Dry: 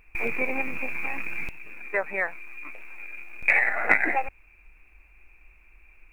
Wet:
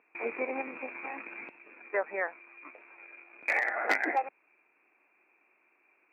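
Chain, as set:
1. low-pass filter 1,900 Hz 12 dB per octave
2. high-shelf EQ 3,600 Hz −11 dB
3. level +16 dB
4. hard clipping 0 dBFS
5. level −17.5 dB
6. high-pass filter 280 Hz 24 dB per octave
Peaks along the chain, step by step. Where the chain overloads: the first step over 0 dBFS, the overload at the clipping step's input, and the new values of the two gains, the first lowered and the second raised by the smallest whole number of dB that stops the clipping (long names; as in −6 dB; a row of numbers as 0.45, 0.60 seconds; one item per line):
−6.0, −8.0, +8.0, 0.0, −17.5, −13.0 dBFS
step 3, 8.0 dB
step 3 +8 dB, step 5 −9.5 dB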